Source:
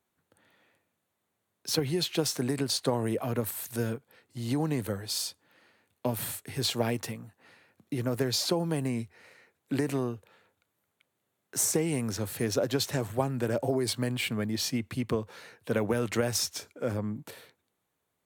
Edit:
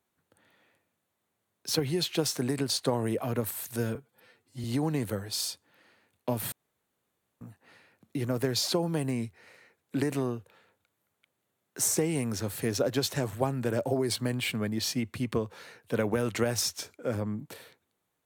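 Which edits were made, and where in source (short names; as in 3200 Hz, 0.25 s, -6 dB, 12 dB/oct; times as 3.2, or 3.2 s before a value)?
3.95–4.41 stretch 1.5×
6.29–7.18 room tone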